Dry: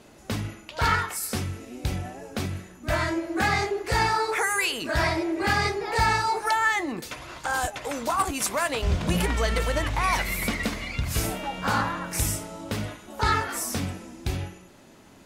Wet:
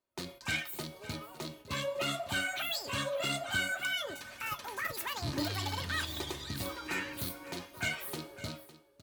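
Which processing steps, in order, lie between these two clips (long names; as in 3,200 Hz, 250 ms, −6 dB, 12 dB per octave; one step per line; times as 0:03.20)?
loose part that buzzes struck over −25 dBFS, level −17 dBFS
noise gate −46 dBFS, range −27 dB
comb filter 5.5 ms, depth 38%
change of speed 1.69×
tuned comb filter 140 Hz, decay 0.19 s, harmonics all, mix 60%
single-tap delay 556 ms −16 dB
level −6 dB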